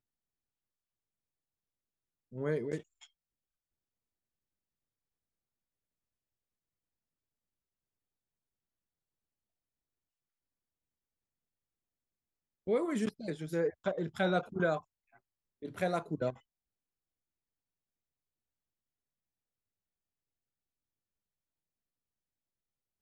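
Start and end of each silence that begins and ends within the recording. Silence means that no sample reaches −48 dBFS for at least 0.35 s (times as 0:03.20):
0:03.04–0:12.67
0:14.80–0:15.62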